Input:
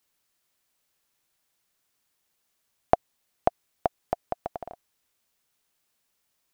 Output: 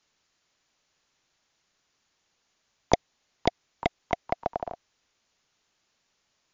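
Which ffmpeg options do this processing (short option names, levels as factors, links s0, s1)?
-filter_complex "[0:a]asplit=2[s0][s1];[s1]asetrate=58866,aresample=44100,atempo=0.749154,volume=0.126[s2];[s0][s2]amix=inputs=2:normalize=0,acrossover=split=380|500[s3][s4][s5];[s5]aeval=exprs='0.0708*(abs(mod(val(0)/0.0708+3,4)-2)-1)':c=same[s6];[s3][s4][s6]amix=inputs=3:normalize=0,volume=2" -ar 16000 -c:a libmp3lame -b:a 160k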